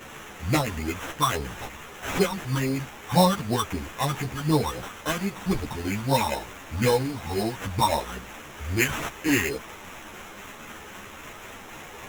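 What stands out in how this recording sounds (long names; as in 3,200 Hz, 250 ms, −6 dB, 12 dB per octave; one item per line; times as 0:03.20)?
a quantiser's noise floor 8 bits, dither triangular
phaser sweep stages 4, 3.8 Hz, lowest notch 490–1,900 Hz
aliases and images of a low sample rate 4,600 Hz, jitter 0%
a shimmering, thickened sound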